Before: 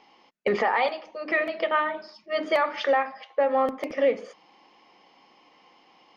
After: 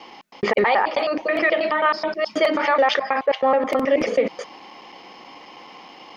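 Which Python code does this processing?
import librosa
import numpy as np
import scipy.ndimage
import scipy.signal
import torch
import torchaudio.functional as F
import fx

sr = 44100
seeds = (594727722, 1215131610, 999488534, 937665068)

p1 = fx.block_reorder(x, sr, ms=107.0, group=2)
p2 = fx.over_compress(p1, sr, threshold_db=-36.0, ratio=-1.0)
p3 = p1 + F.gain(torch.from_numpy(p2), 0.0).numpy()
y = F.gain(torch.from_numpy(p3), 4.0).numpy()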